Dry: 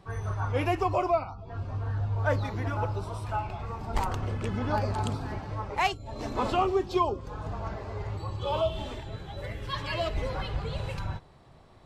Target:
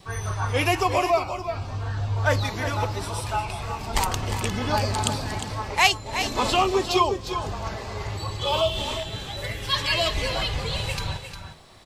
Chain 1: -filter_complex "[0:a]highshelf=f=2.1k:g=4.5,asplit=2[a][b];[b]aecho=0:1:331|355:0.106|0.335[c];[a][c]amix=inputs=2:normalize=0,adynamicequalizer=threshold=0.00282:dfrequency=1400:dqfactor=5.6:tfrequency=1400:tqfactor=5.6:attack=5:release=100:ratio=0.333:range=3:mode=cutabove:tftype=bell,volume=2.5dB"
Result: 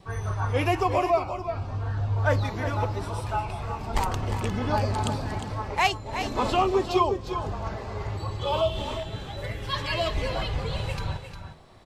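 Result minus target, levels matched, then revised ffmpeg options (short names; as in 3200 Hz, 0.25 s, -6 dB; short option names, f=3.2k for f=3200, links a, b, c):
4000 Hz band -5.5 dB
-filter_complex "[0:a]highshelf=f=2.1k:g=16,asplit=2[a][b];[b]aecho=0:1:331|355:0.106|0.335[c];[a][c]amix=inputs=2:normalize=0,adynamicequalizer=threshold=0.00282:dfrequency=1400:dqfactor=5.6:tfrequency=1400:tqfactor=5.6:attack=5:release=100:ratio=0.333:range=3:mode=cutabove:tftype=bell,volume=2.5dB"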